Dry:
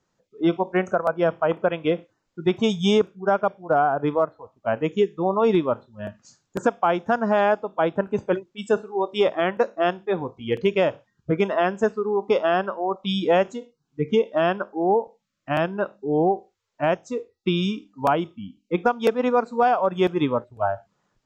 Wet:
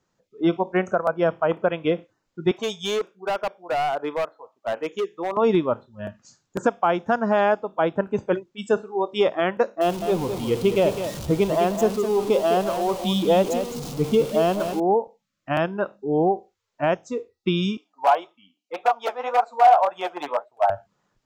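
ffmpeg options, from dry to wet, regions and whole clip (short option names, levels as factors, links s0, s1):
-filter_complex "[0:a]asettb=1/sr,asplit=3[s0][s1][s2];[s0]atrim=end=2.514[s3];[s1]atrim=start=2.51:end=5.37,asetpts=PTS-STARTPTS,afade=t=in:d=0.004:c=qsin,afade=t=out:st=2.856:d=0.004:c=qsin,highpass=430,asoftclip=type=hard:threshold=0.0944[s4];[s2]atrim=start=5.366[s5];[s3][s4]acrossfade=d=0.004:c1=hsin:c2=qsin[s6];[s6][s5]acrossfade=d=0.004:c1=qsin:c2=hsin,asettb=1/sr,asplit=3[s7][s8][s9];[s7]atrim=end=9.814[s10];[s8]atrim=start=9.81:end=14.8,asetpts=PTS-STARTPTS,afade=t=in:d=0.004:c=qsin,afade=t=out:st=4.986:d=0.004:c=qsin,aeval=exprs='val(0)+0.5*0.0447*sgn(val(0))':c=same,equalizer=f=1700:t=o:w=0.82:g=-12,aecho=1:1:208:0.376,atrim=end_sample=220059[s11];[s9]atrim=start=14.796[s12];[s10][s11]acrossfade=d=0.004:c1=hsin:c2=qsin[s13];[s13][s12]acrossfade=d=0.004:c1=qsin:c2=hsin,asettb=1/sr,asplit=3[s14][s15][s16];[s14]atrim=end=17.774[s17];[s15]atrim=start=17.77:end=20.7,asetpts=PTS-STARTPTS,afade=t=in:d=0.004:c=qsin,afade=t=out:st=2.926:d=0.004:c=qsin,flanger=delay=5.7:depth=8.5:regen=41:speed=1.8:shape=triangular,aeval=exprs='0.133*(abs(mod(val(0)/0.133+3,4)-2)-1)':c=same,highpass=f=730:t=q:w=3.7[s18];[s16]atrim=start=20.696[s19];[s17][s18]acrossfade=d=0.004:c1=hsin:c2=qsin[s20];[s20][s19]acrossfade=d=0.004:c1=qsin:c2=hsin"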